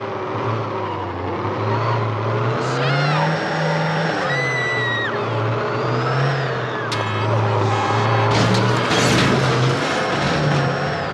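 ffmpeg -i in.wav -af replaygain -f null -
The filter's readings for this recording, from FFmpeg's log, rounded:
track_gain = +1.4 dB
track_peak = 0.505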